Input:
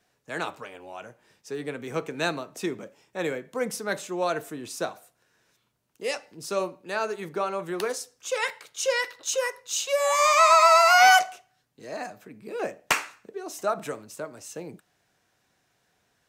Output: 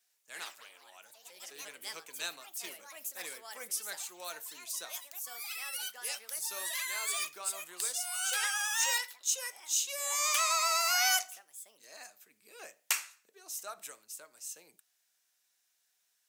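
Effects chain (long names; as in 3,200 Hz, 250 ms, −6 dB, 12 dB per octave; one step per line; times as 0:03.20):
delay with pitch and tempo change per echo 100 ms, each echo +4 semitones, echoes 3, each echo −6 dB
first difference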